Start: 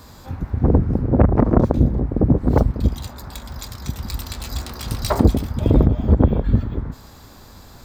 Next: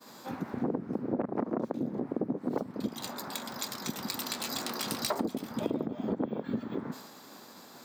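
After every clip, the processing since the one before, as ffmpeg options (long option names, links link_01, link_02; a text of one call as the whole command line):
ffmpeg -i in.wav -af "highpass=frequency=200:width=0.5412,highpass=frequency=200:width=1.3066,agate=range=-33dB:threshold=-42dB:ratio=3:detection=peak,acompressor=threshold=-29dB:ratio=6" out.wav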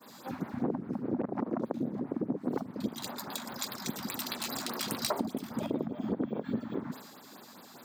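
ffmpeg -i in.wav -af "afftfilt=real='re*(1-between(b*sr/1024,370*pow(7200/370,0.5+0.5*sin(2*PI*4.9*pts/sr))/1.41,370*pow(7200/370,0.5+0.5*sin(2*PI*4.9*pts/sr))*1.41))':imag='im*(1-between(b*sr/1024,370*pow(7200/370,0.5+0.5*sin(2*PI*4.9*pts/sr))/1.41,370*pow(7200/370,0.5+0.5*sin(2*PI*4.9*pts/sr))*1.41))':win_size=1024:overlap=0.75" out.wav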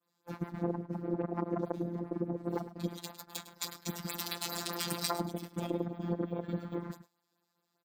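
ffmpeg -i in.wav -filter_complex "[0:a]agate=range=-28dB:threshold=-38dB:ratio=16:detection=peak,asplit=2[link_01][link_02];[link_02]adelay=105,volume=-14dB,highshelf=frequency=4000:gain=-2.36[link_03];[link_01][link_03]amix=inputs=2:normalize=0,afftfilt=real='hypot(re,im)*cos(PI*b)':imag='0':win_size=1024:overlap=0.75,volume=2.5dB" out.wav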